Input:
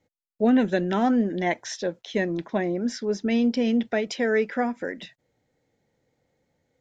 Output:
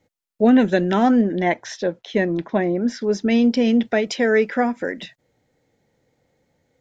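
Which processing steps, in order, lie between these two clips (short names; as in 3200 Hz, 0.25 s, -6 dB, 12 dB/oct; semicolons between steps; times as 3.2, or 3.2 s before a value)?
1.21–3.01 LPF 3100 Hz 6 dB/oct; gain +5.5 dB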